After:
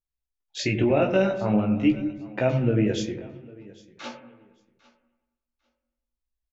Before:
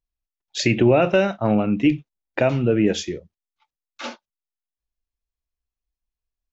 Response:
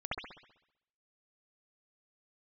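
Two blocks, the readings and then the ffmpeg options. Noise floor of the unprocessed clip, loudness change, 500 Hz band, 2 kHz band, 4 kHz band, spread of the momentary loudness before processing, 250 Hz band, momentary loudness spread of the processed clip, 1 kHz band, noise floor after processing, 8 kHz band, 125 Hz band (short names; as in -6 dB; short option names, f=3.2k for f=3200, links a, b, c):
under -85 dBFS, -4.0 dB, -4.5 dB, -5.5 dB, -6.0 dB, 19 LU, -3.0 dB, 19 LU, -5.5 dB, under -85 dBFS, n/a, -2.0 dB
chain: -filter_complex "[0:a]aecho=1:1:800|1600:0.0794|0.0143,flanger=delay=15:depth=6:speed=0.44,asplit=2[a][b];[b]lowshelf=f=400:g=11.5[c];[1:a]atrim=start_sample=2205,asetrate=32193,aresample=44100[d];[c][d]afir=irnorm=-1:irlink=0,volume=-18dB[e];[a][e]amix=inputs=2:normalize=0,volume=-3.5dB"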